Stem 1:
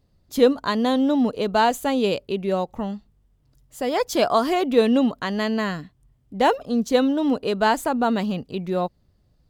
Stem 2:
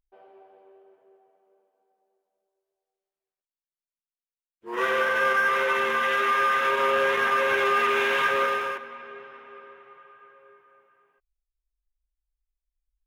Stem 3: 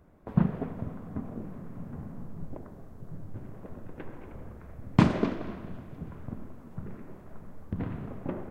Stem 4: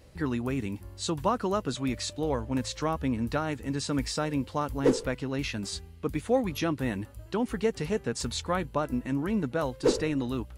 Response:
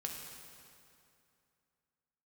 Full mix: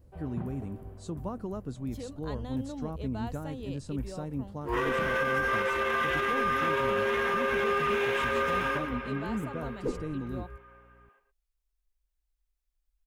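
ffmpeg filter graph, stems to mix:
-filter_complex "[0:a]alimiter=limit=-12.5dB:level=0:latency=1:release=209,aeval=exprs='val(0)+0.0112*(sin(2*PI*60*n/s)+sin(2*PI*2*60*n/s)/2+sin(2*PI*3*60*n/s)/3+sin(2*PI*4*60*n/s)/4+sin(2*PI*5*60*n/s)/5)':channel_layout=same,bandreject=frequency=4600:width=12,adelay=1600,volume=-19.5dB[link_01];[1:a]acrossover=split=500[link_02][link_03];[link_03]acompressor=threshold=-27dB:ratio=6[link_04];[link_02][link_04]amix=inputs=2:normalize=0,volume=2.5dB,asplit=2[link_05][link_06];[link_06]volume=-9.5dB[link_07];[2:a]volume=-14dB[link_08];[3:a]lowshelf=frequency=180:gain=8,equalizer=frequency=3000:width=0.34:gain=-13.5,volume=-7.5dB[link_09];[link_07]aecho=0:1:114:1[link_10];[link_01][link_05][link_08][link_09][link_10]amix=inputs=5:normalize=0,alimiter=limit=-19.5dB:level=0:latency=1:release=73"

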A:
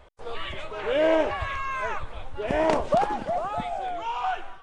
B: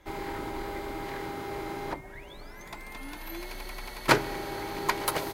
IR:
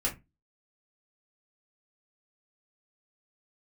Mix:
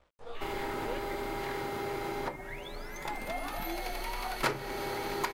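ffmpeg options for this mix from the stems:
-filter_complex "[0:a]aeval=exprs='sgn(val(0))*max(abs(val(0))-0.00237,0)':channel_layout=same,flanger=delay=16.5:depth=5.8:speed=2.9,volume=-5.5dB,asplit=3[link_01][link_02][link_03];[link_01]atrim=end=0.99,asetpts=PTS-STARTPTS,afade=type=out:start_time=0.986:duration=0.004:curve=hsin[link_04];[link_02]atrim=start=0.99:end=3.05,asetpts=PTS-STARTPTS,volume=0[link_05];[link_03]atrim=start=3.05,asetpts=PTS-STARTPTS,afade=type=in:duration=0.004:curve=hsin[link_06];[link_04][link_05][link_06]concat=n=3:v=0:a=1[link_07];[1:a]lowshelf=frequency=100:gain=-8,adelay=350,volume=1dB,asplit=2[link_08][link_09];[link_09]volume=-9.5dB[link_10];[2:a]atrim=start_sample=2205[link_11];[link_10][link_11]afir=irnorm=-1:irlink=0[link_12];[link_07][link_08][link_12]amix=inputs=3:normalize=0,acompressor=threshold=-33dB:ratio=2.5"

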